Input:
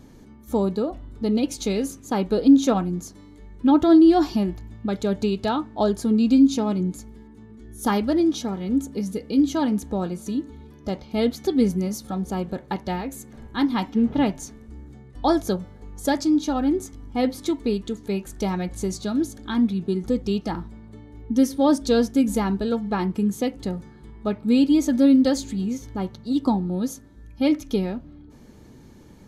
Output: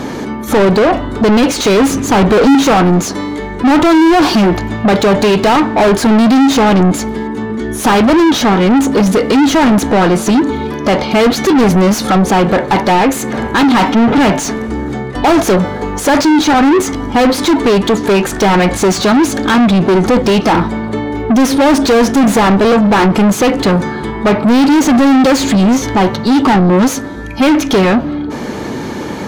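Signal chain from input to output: 1.77–2.55 s: bass shelf 240 Hz +10.5 dB; overdrive pedal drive 43 dB, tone 1.9 kHz, clips at -1 dBFS

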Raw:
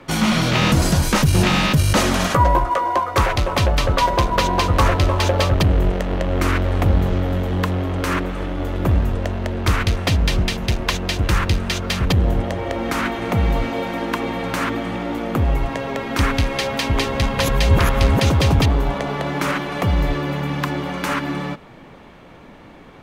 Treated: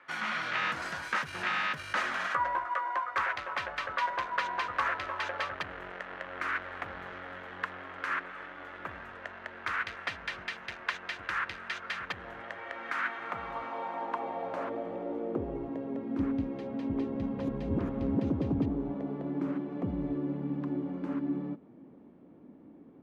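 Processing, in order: band-pass sweep 1.6 kHz -> 270 Hz, 13.04–16.01 s; trim -4.5 dB

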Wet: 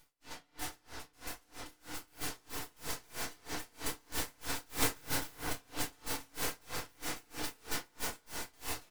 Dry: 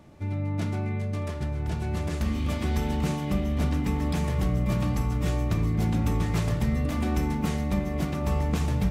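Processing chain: tracing distortion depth 0.037 ms; high-pass 120 Hz 12 dB/octave; spectral gate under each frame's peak -30 dB weak; 4.49–5.35 s: peaking EQ 11 kHz +10.5 dB 2.8 oct; full-wave rectifier; echo from a far wall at 44 m, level -10 dB; reverberation RT60 1.4 s, pre-delay 3 ms, DRR -7.5 dB; logarithmic tremolo 3.1 Hz, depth 31 dB; trim +10 dB

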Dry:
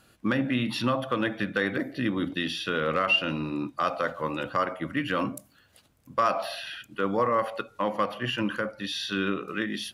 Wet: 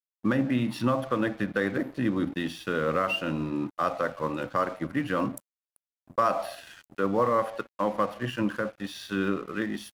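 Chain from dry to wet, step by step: peaking EQ 3.3 kHz -9 dB 1.8 oct; crossover distortion -48 dBFS; trim +2 dB

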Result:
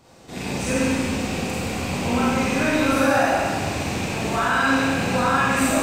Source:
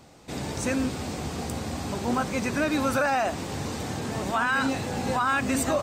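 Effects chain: rattle on loud lows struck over -32 dBFS, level -23 dBFS; Schroeder reverb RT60 1.9 s, combs from 33 ms, DRR -8.5 dB; trim -3.5 dB

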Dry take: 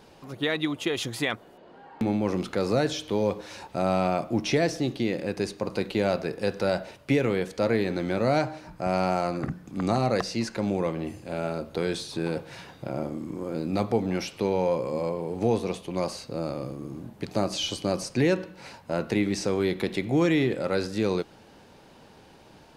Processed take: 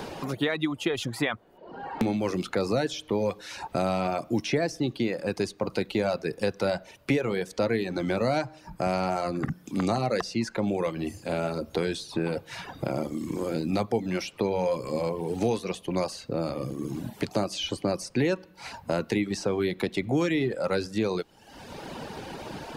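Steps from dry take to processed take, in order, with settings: reverb removal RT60 0.77 s; three bands compressed up and down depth 70%

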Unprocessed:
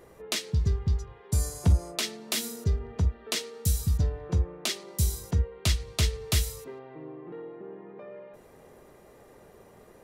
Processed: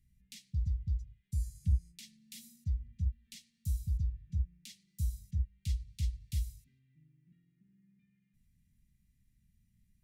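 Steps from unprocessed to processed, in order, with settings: Chebyshev band-stop 210–2000 Hz, order 3; amplifier tone stack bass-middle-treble 10-0-1; trim +1.5 dB

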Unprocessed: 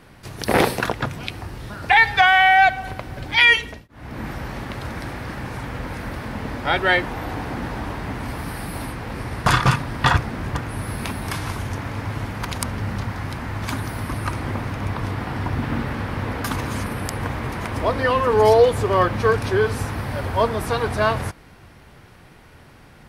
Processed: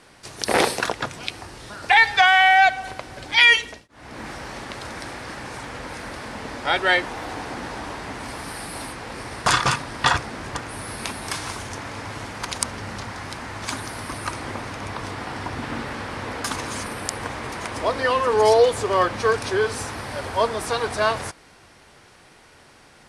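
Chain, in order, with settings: low-pass 9.6 kHz 24 dB/octave; tone controls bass -10 dB, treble +8 dB; trim -1 dB

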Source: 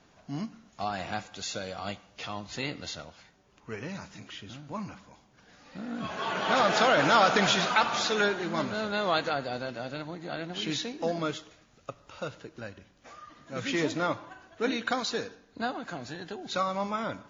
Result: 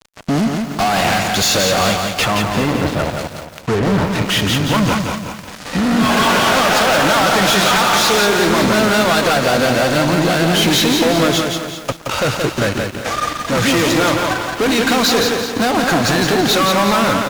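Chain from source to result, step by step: 2.22–4.29 s: low-pass that closes with the level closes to 1.1 kHz, closed at -36 dBFS; compression, threshold -34 dBFS, peak gain reduction 16 dB; fuzz box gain 46 dB, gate -53 dBFS; feedback delay 388 ms, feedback 19%, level -13 dB; bit-crushed delay 173 ms, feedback 35%, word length 6-bit, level -4 dB

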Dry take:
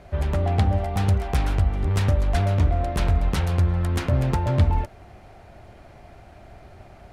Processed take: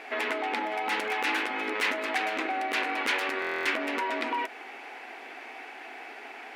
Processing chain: brick-wall FIR high-pass 220 Hz; peak limiter -22.5 dBFS, peak gain reduction 8 dB; compression, threshold -32 dBFS, peak gain reduction 5 dB; peaking EQ 2 kHz +14.5 dB 1.3 oct; speed mistake 44.1 kHz file played as 48 kHz; band-stop 610 Hz, Q 12; buffer glitch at 3.40 s, samples 1024, times 10; trim +2 dB

